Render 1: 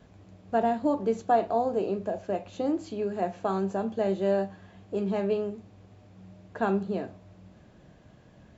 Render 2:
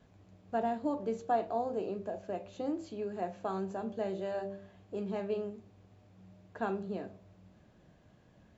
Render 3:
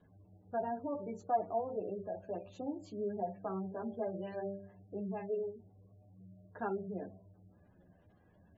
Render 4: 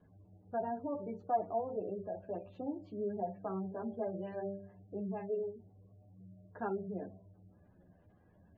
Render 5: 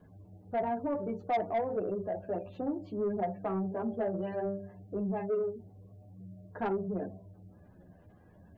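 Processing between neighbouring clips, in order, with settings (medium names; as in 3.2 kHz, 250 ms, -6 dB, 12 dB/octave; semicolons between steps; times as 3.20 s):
de-hum 65.68 Hz, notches 10; trim -7 dB
chorus voices 2, 0.64 Hz, delay 11 ms, depth 1.3 ms; spectral gate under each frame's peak -25 dB strong
distance through air 370 m; trim +1 dB
saturation -31 dBFS, distortion -14 dB; trim +7 dB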